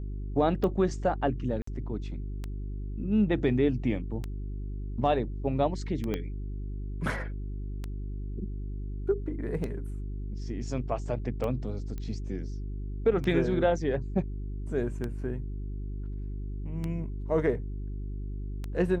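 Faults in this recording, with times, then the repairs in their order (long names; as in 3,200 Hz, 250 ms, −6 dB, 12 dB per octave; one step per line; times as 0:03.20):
mains hum 50 Hz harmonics 8 −35 dBFS
scratch tick 33 1/3 rpm −21 dBFS
0:01.62–0:01.67: drop-out 54 ms
0:06.14: click −18 dBFS
0:11.98: click −25 dBFS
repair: click removal
hum removal 50 Hz, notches 8
repair the gap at 0:01.62, 54 ms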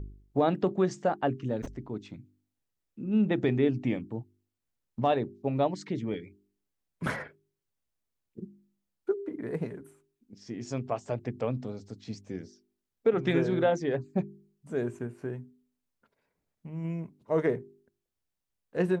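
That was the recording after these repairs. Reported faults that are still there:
0:06.14: click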